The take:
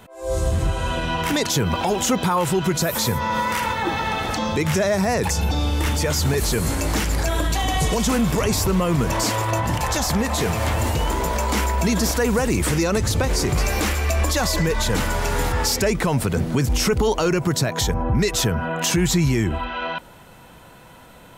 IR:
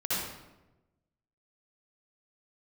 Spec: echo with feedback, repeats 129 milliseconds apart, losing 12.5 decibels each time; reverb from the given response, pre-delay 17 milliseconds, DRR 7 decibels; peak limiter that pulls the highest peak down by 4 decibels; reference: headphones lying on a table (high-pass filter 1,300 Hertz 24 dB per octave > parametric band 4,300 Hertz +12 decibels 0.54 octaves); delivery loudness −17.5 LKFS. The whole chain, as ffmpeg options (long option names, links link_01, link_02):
-filter_complex "[0:a]alimiter=limit=-14dB:level=0:latency=1,aecho=1:1:129|258|387:0.237|0.0569|0.0137,asplit=2[link_01][link_02];[1:a]atrim=start_sample=2205,adelay=17[link_03];[link_02][link_03]afir=irnorm=-1:irlink=0,volume=-15dB[link_04];[link_01][link_04]amix=inputs=2:normalize=0,highpass=frequency=1300:width=0.5412,highpass=frequency=1300:width=1.3066,equalizer=frequency=4300:width_type=o:width=0.54:gain=12,volume=5.5dB"